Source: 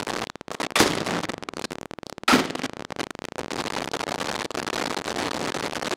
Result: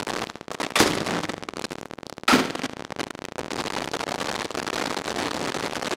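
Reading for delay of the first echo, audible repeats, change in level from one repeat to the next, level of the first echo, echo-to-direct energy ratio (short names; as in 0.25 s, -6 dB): 72 ms, 3, -6.5 dB, -17.0 dB, -16.0 dB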